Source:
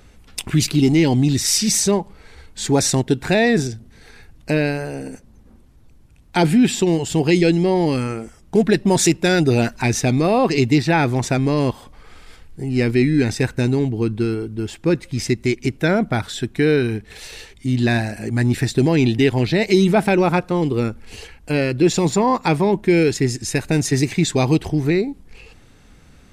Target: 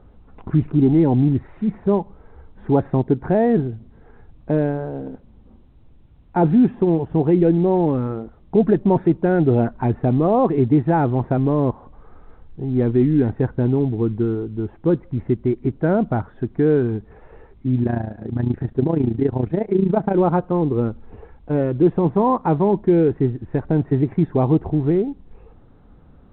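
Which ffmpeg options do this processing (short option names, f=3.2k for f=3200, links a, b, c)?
-filter_complex "[0:a]lowpass=f=1.2k:w=0.5412,lowpass=f=1.2k:w=1.3066,asettb=1/sr,asplit=3[a][b][c];[a]atrim=end=17.834[d];[b]atrim=start=17.83:end=20.15,asetpts=PTS-STARTPTS,afade=t=in:d=0.004:c=qsin,afade=t=out:st=2.316:d=0.004:c=qsin,tremolo=f=28:d=0.75[e];[c]atrim=start=20.146[f];[d][e]acrossfade=d=0.004:c1=hsin:c2=qsin[g];[g][f]acrossfade=d=0.004:c1=qsin:c2=hsin" -ar 8000 -c:a pcm_alaw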